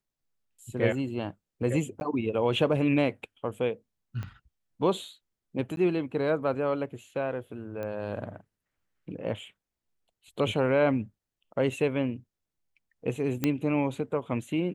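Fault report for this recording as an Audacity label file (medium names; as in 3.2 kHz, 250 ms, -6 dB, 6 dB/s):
2.000000	2.010000	dropout 11 ms
4.230000	4.230000	pop -25 dBFS
5.760000	5.770000	dropout 12 ms
7.830000	7.830000	pop -24 dBFS
13.440000	13.440000	pop -12 dBFS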